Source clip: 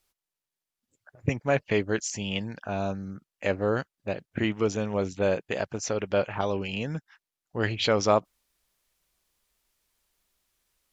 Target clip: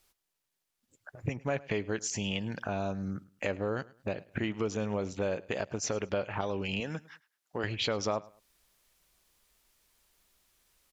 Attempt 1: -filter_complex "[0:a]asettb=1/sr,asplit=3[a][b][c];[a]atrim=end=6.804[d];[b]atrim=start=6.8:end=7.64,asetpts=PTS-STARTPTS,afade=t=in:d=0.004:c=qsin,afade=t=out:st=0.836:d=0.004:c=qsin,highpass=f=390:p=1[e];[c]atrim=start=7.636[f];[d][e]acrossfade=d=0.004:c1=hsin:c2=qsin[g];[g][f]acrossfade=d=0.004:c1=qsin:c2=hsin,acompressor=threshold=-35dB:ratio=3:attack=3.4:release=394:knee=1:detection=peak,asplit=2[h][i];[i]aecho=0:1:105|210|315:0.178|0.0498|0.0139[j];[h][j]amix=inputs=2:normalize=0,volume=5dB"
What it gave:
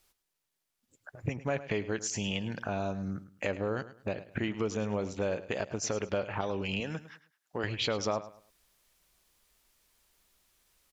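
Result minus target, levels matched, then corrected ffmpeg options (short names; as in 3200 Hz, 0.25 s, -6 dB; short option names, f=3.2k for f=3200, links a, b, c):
echo-to-direct +6.5 dB
-filter_complex "[0:a]asettb=1/sr,asplit=3[a][b][c];[a]atrim=end=6.804[d];[b]atrim=start=6.8:end=7.64,asetpts=PTS-STARTPTS,afade=t=in:d=0.004:c=qsin,afade=t=out:st=0.836:d=0.004:c=qsin,highpass=f=390:p=1[e];[c]atrim=start=7.636[f];[d][e]acrossfade=d=0.004:c1=hsin:c2=qsin[g];[g][f]acrossfade=d=0.004:c1=qsin:c2=hsin,acompressor=threshold=-35dB:ratio=3:attack=3.4:release=394:knee=1:detection=peak,asplit=2[h][i];[i]aecho=0:1:105|210:0.0841|0.0236[j];[h][j]amix=inputs=2:normalize=0,volume=5dB"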